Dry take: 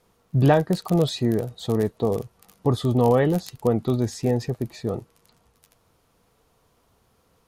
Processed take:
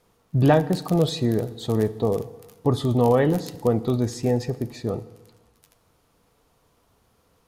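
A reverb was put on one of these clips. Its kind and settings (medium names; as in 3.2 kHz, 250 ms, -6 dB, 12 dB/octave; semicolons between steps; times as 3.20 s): FDN reverb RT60 1.2 s, low-frequency decay 1.05×, high-frequency decay 0.9×, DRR 13.5 dB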